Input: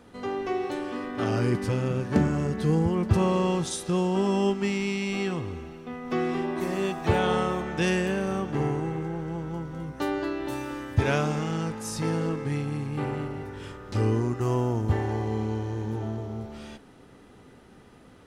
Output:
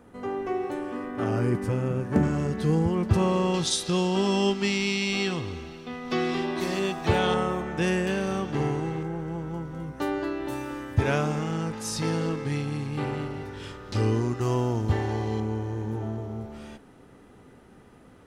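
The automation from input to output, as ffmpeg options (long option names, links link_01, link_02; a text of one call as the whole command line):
ffmpeg -i in.wav -af "asetnsamples=nb_out_samples=441:pad=0,asendcmd='2.23 equalizer g 0.5;3.54 equalizer g 11;6.79 equalizer g 5;7.34 equalizer g -4;8.07 equalizer g 6;9.03 equalizer g -2.5;11.73 equalizer g 6;15.4 equalizer g -5',equalizer=frequency=4200:width_type=o:width=1.4:gain=-10" out.wav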